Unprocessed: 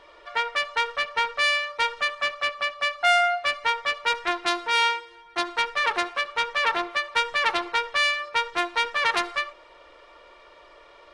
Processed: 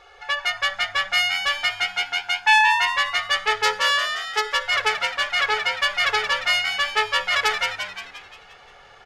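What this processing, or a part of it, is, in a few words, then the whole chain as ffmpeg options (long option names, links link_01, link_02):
nightcore: -filter_complex "[0:a]highshelf=frequency=9600:gain=-5.5,aecho=1:1:2.9:0.68,asetrate=54243,aresample=44100,equalizer=frequency=4400:width=4.2:gain=-2.5,asplit=8[link_01][link_02][link_03][link_04][link_05][link_06][link_07][link_08];[link_02]adelay=175,afreqshift=89,volume=-6.5dB[link_09];[link_03]adelay=350,afreqshift=178,volume=-12dB[link_10];[link_04]adelay=525,afreqshift=267,volume=-17.5dB[link_11];[link_05]adelay=700,afreqshift=356,volume=-23dB[link_12];[link_06]adelay=875,afreqshift=445,volume=-28.6dB[link_13];[link_07]adelay=1050,afreqshift=534,volume=-34.1dB[link_14];[link_08]adelay=1225,afreqshift=623,volume=-39.6dB[link_15];[link_01][link_09][link_10][link_11][link_12][link_13][link_14][link_15]amix=inputs=8:normalize=0"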